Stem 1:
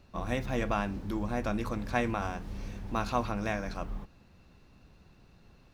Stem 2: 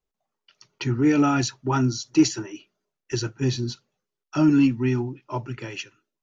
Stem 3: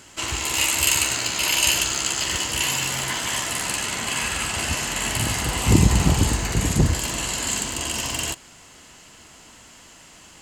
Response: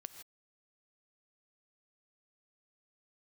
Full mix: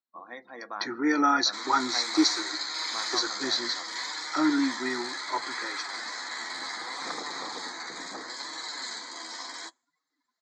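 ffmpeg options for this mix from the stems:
-filter_complex "[0:a]volume=-5dB[link_01];[1:a]volume=0.5dB,asplit=2[link_02][link_03];[link_03]volume=-12.5dB[link_04];[2:a]flanger=delay=6.3:depth=5.9:regen=-17:speed=0.69:shape=sinusoidal,aeval=exprs='0.112*(abs(mod(val(0)/0.112+3,4)-2)-1)':channel_layout=same,adelay=1350,volume=-4dB[link_05];[3:a]atrim=start_sample=2205[link_06];[link_04][link_06]afir=irnorm=-1:irlink=0[link_07];[link_01][link_02][link_05][link_07]amix=inputs=4:normalize=0,afftdn=noise_reduction=29:noise_floor=-46,asuperstop=centerf=2800:order=4:qfactor=1.9,highpass=frequency=350:width=0.5412,highpass=frequency=350:width=1.3066,equalizer=frequency=410:width_type=q:width=4:gain=-9,equalizer=frequency=610:width_type=q:width=4:gain=-8,equalizer=frequency=1200:width_type=q:width=4:gain=3,equalizer=frequency=1900:width_type=q:width=4:gain=4,equalizer=frequency=4000:width_type=q:width=4:gain=9,lowpass=frequency=5600:width=0.5412,lowpass=frequency=5600:width=1.3066"

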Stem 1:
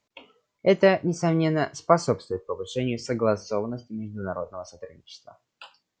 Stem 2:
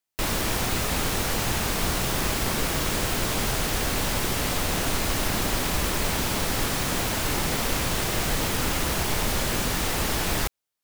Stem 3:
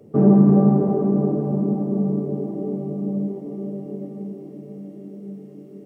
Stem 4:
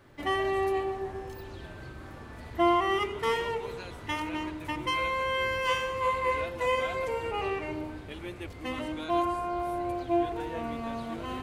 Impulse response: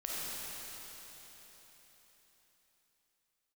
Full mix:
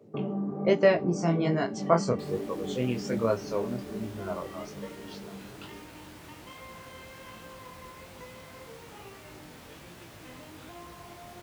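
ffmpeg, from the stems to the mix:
-filter_complex "[0:a]volume=-1dB[link_01];[1:a]bass=frequency=250:gain=2,treble=frequency=4000:gain=-4,adelay=2000,volume=-19.5dB[link_02];[2:a]equalizer=frequency=1100:width_type=o:width=2:gain=6,acompressor=threshold=-23dB:ratio=4,volume=-5.5dB[link_03];[3:a]acompressor=threshold=-37dB:ratio=6,adelay=1600,volume=-7dB[link_04];[link_01][link_02][link_03][link_04]amix=inputs=4:normalize=0,highpass=78,flanger=delay=17:depth=7.5:speed=1.2"

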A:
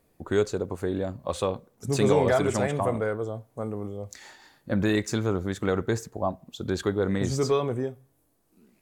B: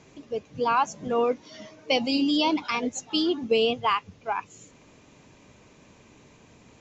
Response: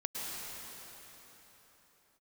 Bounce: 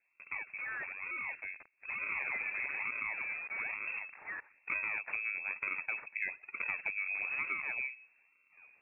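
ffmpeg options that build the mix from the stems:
-filter_complex "[0:a]equalizer=frequency=1400:width=1.9:gain=-6.5,volume=-0.5dB,afade=type=in:start_time=1.99:duration=0.36:silence=0.281838[link_01];[1:a]acrusher=bits=5:mix=0:aa=0.000001,volume=27dB,asoftclip=hard,volume=-27dB,volume=-10.5dB,asplit=2[link_02][link_03];[link_03]apad=whole_len=388695[link_04];[link_01][link_04]sidechaincompress=threshold=-49dB:ratio=4:attack=16:release=458[link_05];[link_05][link_02]amix=inputs=2:normalize=0,acrusher=samples=26:mix=1:aa=0.000001:lfo=1:lforange=41.6:lforate=1.1,lowpass=frequency=2300:width_type=q:width=0.5098,lowpass=frequency=2300:width_type=q:width=0.6013,lowpass=frequency=2300:width_type=q:width=0.9,lowpass=frequency=2300:width_type=q:width=2.563,afreqshift=-2700,acompressor=threshold=-33dB:ratio=12"

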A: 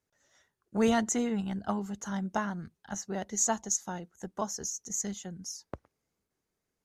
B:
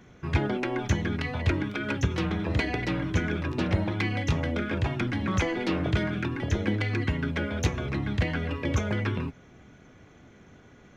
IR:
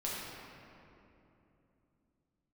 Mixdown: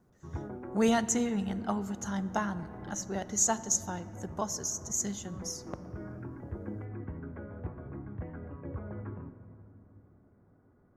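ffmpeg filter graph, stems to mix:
-filter_complex "[0:a]highshelf=frequency=7800:gain=4.5,volume=-1dB,asplit=3[link_01][link_02][link_03];[link_02]volume=-17dB[link_04];[1:a]lowpass=frequency=1300:width=0.5412,lowpass=frequency=1300:width=1.3066,volume=-14.5dB,asplit=2[link_05][link_06];[link_06]volume=-11.5dB[link_07];[link_03]apad=whole_len=483622[link_08];[link_05][link_08]sidechaincompress=threshold=-48dB:ratio=8:attack=16:release=291[link_09];[2:a]atrim=start_sample=2205[link_10];[link_04][link_07]amix=inputs=2:normalize=0[link_11];[link_11][link_10]afir=irnorm=-1:irlink=0[link_12];[link_01][link_09][link_12]amix=inputs=3:normalize=0"

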